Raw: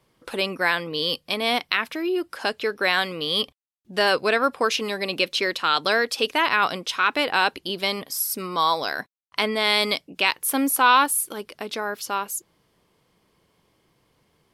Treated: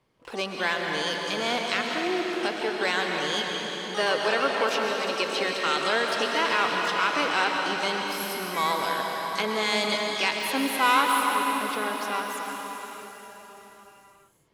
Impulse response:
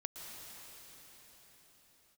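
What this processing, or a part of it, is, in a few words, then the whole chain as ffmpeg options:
shimmer-style reverb: -filter_complex "[0:a]asplit=3[s0][s1][s2];[s0]afade=t=out:st=3.95:d=0.02[s3];[s1]highpass=220,afade=t=in:st=3.95:d=0.02,afade=t=out:st=5.27:d=0.02[s4];[s2]afade=t=in:st=5.27:d=0.02[s5];[s3][s4][s5]amix=inputs=3:normalize=0,asplit=2[s6][s7];[s7]asetrate=88200,aresample=44100,atempo=0.5,volume=0.355[s8];[s6][s8]amix=inputs=2:normalize=0[s9];[1:a]atrim=start_sample=2205[s10];[s9][s10]afir=irnorm=-1:irlink=0,highshelf=f=6500:g=-10,volume=0.891"

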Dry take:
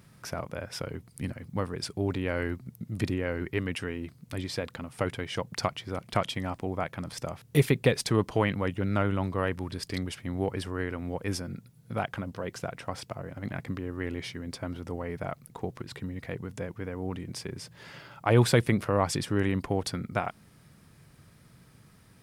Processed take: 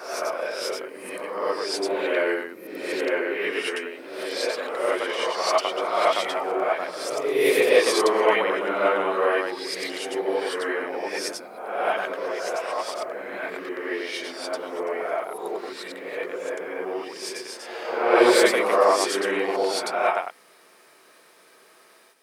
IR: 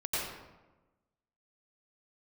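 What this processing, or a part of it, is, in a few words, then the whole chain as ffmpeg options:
ghost voice: -filter_complex "[0:a]areverse[s0];[1:a]atrim=start_sample=2205[s1];[s0][s1]afir=irnorm=-1:irlink=0,areverse,highpass=f=390:w=0.5412,highpass=f=390:w=1.3066,volume=1.5"

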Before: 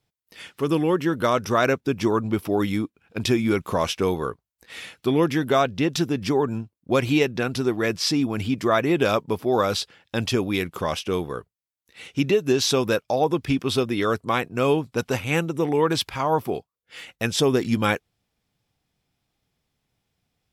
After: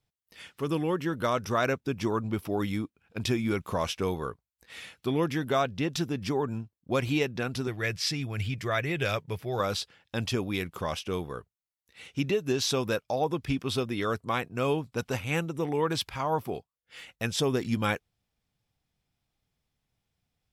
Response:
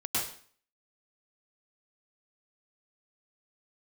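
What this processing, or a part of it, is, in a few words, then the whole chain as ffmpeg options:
low shelf boost with a cut just above: -filter_complex "[0:a]asettb=1/sr,asplit=3[s0][s1][s2];[s0]atrim=end=7.674[s3];[s1]atrim=start=7.67:end=9.6,asetpts=PTS-STARTPTS,afade=t=in:d=0.004:c=qsin,afade=t=out:st=1.926:d=0.004:c=qsin,equalizer=f=125:t=o:w=1:g=6,equalizer=f=250:t=o:w=1:g=-10,equalizer=f=1000:t=o:w=1:g=-7,equalizer=f=2000:t=o:w=1:g=6[s4];[s2]atrim=start=9.596[s5];[s3][s4]acrossfade=d=0.004:c1=hsin:c2=qsin[s6];[s6][s5]acrossfade=d=0.004:c1=qsin:c2=hsin,lowshelf=f=76:g=6.5,equalizer=f=340:t=o:w=1:g=-2.5,volume=0.501"

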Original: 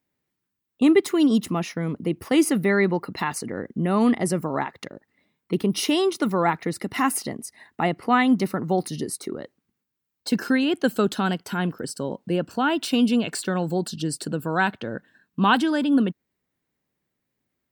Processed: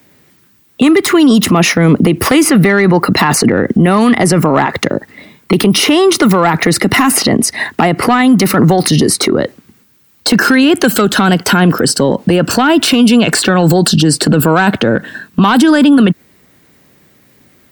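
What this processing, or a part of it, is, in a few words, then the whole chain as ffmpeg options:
mastering chain: -filter_complex "[0:a]highpass=56,equalizer=f=910:t=o:w=0.36:g=-2.5,acrossover=split=140|930|2100|5100[s0][s1][s2][s3][s4];[s0]acompressor=threshold=0.00562:ratio=4[s5];[s1]acompressor=threshold=0.0398:ratio=4[s6];[s2]acompressor=threshold=0.0282:ratio=4[s7];[s3]acompressor=threshold=0.00562:ratio=4[s8];[s4]acompressor=threshold=0.00562:ratio=4[s9];[s5][s6][s7][s8][s9]amix=inputs=5:normalize=0,acompressor=threshold=0.0355:ratio=1.5,asoftclip=type=tanh:threshold=0.119,asoftclip=type=hard:threshold=0.075,alimiter=level_in=42.2:limit=0.891:release=50:level=0:latency=1,volume=0.891"

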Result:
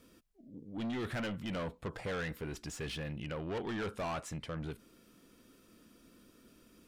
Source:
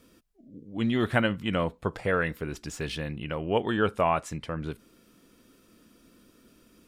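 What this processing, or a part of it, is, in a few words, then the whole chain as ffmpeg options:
saturation between pre-emphasis and de-emphasis: -af "highshelf=f=6900:g=10,asoftclip=type=tanh:threshold=0.0282,highshelf=f=6900:g=-10,volume=0.708"

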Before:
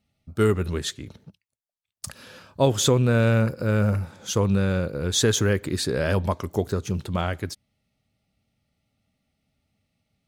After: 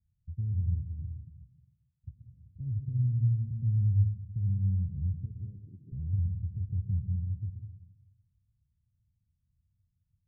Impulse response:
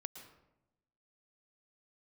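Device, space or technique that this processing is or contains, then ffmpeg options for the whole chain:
club heard from the street: -filter_complex "[0:a]asettb=1/sr,asplit=3[s0][s1][s2];[s0]atrim=end=5.254[s3];[s1]atrim=start=5.25:end=5.92,asetpts=PTS-STARTPTS,afade=t=in:d=0.004:c=qsin,afade=t=out:st=0.666:d=0.004:c=qsin,highpass=310[s4];[s2]atrim=start=5.916[s5];[s3][s4]acrossfade=d=0.004:c1=hsin:c2=qsin[s6];[s6][s5]acrossfade=d=0.004:c1=qsin:c2=hsin,alimiter=limit=0.119:level=0:latency=1,lowpass=f=120:w=0.5412,lowpass=f=120:w=1.3066[s7];[1:a]atrim=start_sample=2205[s8];[s7][s8]afir=irnorm=-1:irlink=0,volume=2.11"

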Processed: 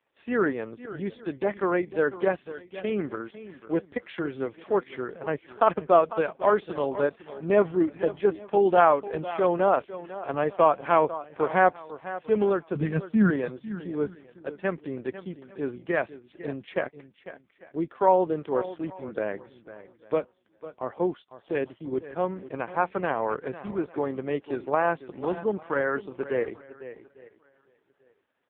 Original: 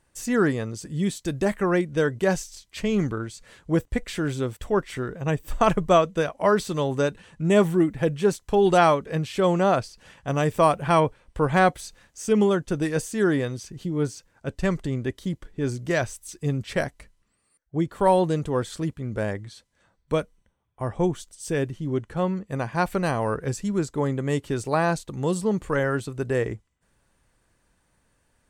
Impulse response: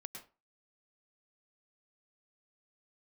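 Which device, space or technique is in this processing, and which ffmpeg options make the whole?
satellite phone: -filter_complex "[0:a]highpass=f=70:p=1,asettb=1/sr,asplit=3[s0][s1][s2];[s0]atrim=end=12.754[s3];[s1]atrim=start=12.75:end=13.3,asetpts=PTS-STARTPTS,afade=t=in:d=0.004:c=qsin,afade=t=out:st=0.546:d=0.004:c=qsin,lowshelf=f=270:t=q:w=3:g=10.5[s4];[s2]atrim=start=13.296[s5];[s3][s4]acrossfade=d=0.004:c1=hsin:c2=qsin[s6];[s6][s5]acrossfade=d=0.004:c1=qsin:c2=hsin,highpass=310,lowpass=3400,aecho=1:1:500:0.188,aecho=1:1:847|1694:0.0668|0.0167" -ar 8000 -c:a libopencore_amrnb -b:a 4750

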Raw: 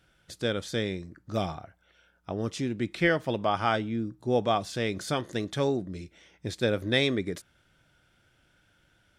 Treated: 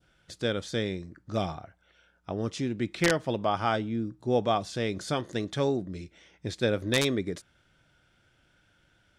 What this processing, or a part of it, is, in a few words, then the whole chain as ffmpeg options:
overflowing digital effects unit: -af "adynamicequalizer=threshold=0.00794:dfrequency=2100:dqfactor=0.85:tfrequency=2100:tqfactor=0.85:attack=5:release=100:ratio=0.375:range=2:mode=cutabove:tftype=bell,aeval=exprs='(mod(4.47*val(0)+1,2)-1)/4.47':c=same,lowpass=9100"

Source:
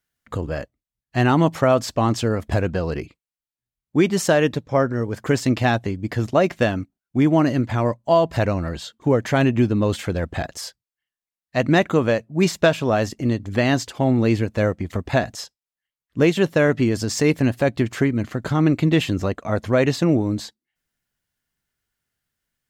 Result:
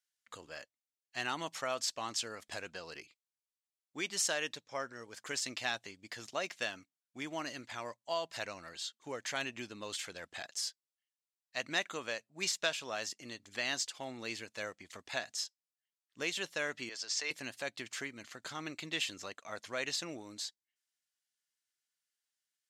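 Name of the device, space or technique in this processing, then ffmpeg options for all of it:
piezo pickup straight into a mixer: -filter_complex "[0:a]lowpass=6800,aderivative,asettb=1/sr,asplit=3[s0][s1][s2];[s0]atrim=end=16.894[s3];[s1]atrim=start=16.89:end=17.31,asetpts=PTS-STARTPTS,afade=t=in:d=0.004:c=qsin,afade=t=out:st=0.416:d=0.004:c=qsin,acrossover=split=430 6400:gain=0.141 1 0.126[s4][s5][s6];[s4][s5][s6]amix=inputs=3:normalize=0[s7];[s2]atrim=start=17.306[s8];[s3][s7]acrossfade=d=0.004:c1=hsin:c2=qsin[s9];[s9][s8]acrossfade=d=0.004:c1=qsin:c2=hsin"

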